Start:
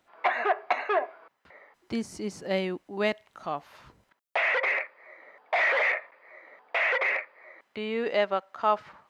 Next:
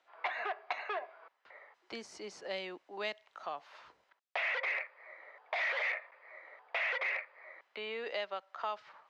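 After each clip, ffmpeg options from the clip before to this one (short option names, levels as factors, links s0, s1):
-filter_complex "[0:a]acrossover=split=220|3000[s0][s1][s2];[s1]acompressor=threshold=0.02:ratio=4[s3];[s0][s3][s2]amix=inputs=3:normalize=0,acrossover=split=420 6400:gain=0.0794 1 0.0794[s4][s5][s6];[s4][s5][s6]amix=inputs=3:normalize=0,volume=0.794"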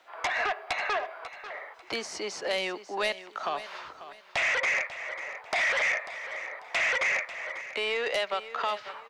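-filter_complex "[0:a]acrossover=split=450|2000[s0][s1][s2];[s0]acompressor=threshold=0.00158:ratio=4[s3];[s1]acompressor=threshold=0.00891:ratio=4[s4];[s2]acompressor=threshold=0.00891:ratio=4[s5];[s3][s4][s5]amix=inputs=3:normalize=0,aeval=exprs='0.075*sin(PI/2*3.16*val(0)/0.075)':c=same,aecho=1:1:543|1086|1629:0.2|0.0619|0.0192"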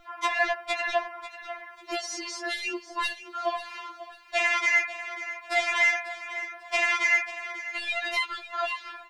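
-af "aeval=exprs='val(0)+0.00316*(sin(2*PI*60*n/s)+sin(2*PI*2*60*n/s)/2+sin(2*PI*3*60*n/s)/3+sin(2*PI*4*60*n/s)/4+sin(2*PI*5*60*n/s)/5)':c=same,afftfilt=real='re*4*eq(mod(b,16),0)':imag='im*4*eq(mod(b,16),0)':win_size=2048:overlap=0.75,volume=1.68"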